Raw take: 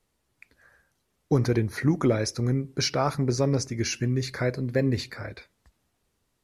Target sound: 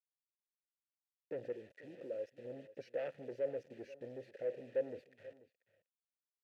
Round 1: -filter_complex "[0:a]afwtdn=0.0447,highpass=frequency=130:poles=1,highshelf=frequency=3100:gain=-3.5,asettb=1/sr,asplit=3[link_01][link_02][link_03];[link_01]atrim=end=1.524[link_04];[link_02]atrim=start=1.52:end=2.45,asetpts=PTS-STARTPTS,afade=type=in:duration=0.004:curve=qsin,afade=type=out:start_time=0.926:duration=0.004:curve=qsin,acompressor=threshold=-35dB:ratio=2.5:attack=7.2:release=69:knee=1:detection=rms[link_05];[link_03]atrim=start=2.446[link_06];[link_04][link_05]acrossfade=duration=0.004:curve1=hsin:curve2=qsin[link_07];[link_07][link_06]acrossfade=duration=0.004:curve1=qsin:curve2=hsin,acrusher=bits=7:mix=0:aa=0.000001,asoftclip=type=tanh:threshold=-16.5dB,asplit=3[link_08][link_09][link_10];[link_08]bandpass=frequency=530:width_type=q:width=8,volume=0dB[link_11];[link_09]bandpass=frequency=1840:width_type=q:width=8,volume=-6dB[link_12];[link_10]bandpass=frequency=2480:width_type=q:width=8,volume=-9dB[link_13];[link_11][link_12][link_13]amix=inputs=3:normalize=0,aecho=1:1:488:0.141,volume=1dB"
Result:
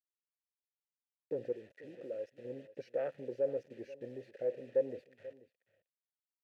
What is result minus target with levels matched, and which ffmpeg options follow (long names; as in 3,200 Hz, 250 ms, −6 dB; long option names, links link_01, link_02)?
soft clipping: distortion −10 dB
-filter_complex "[0:a]afwtdn=0.0447,highpass=frequency=130:poles=1,highshelf=frequency=3100:gain=-3.5,asettb=1/sr,asplit=3[link_01][link_02][link_03];[link_01]atrim=end=1.524[link_04];[link_02]atrim=start=1.52:end=2.45,asetpts=PTS-STARTPTS,afade=type=in:duration=0.004:curve=qsin,afade=type=out:start_time=0.926:duration=0.004:curve=qsin,acompressor=threshold=-35dB:ratio=2.5:attack=7.2:release=69:knee=1:detection=rms[link_05];[link_03]atrim=start=2.446[link_06];[link_04][link_05]acrossfade=duration=0.004:curve1=hsin:curve2=qsin[link_07];[link_07][link_06]acrossfade=duration=0.004:curve1=qsin:curve2=hsin,acrusher=bits=7:mix=0:aa=0.000001,asoftclip=type=tanh:threshold=-26dB,asplit=3[link_08][link_09][link_10];[link_08]bandpass=frequency=530:width_type=q:width=8,volume=0dB[link_11];[link_09]bandpass=frequency=1840:width_type=q:width=8,volume=-6dB[link_12];[link_10]bandpass=frequency=2480:width_type=q:width=8,volume=-9dB[link_13];[link_11][link_12][link_13]amix=inputs=3:normalize=0,aecho=1:1:488:0.141,volume=1dB"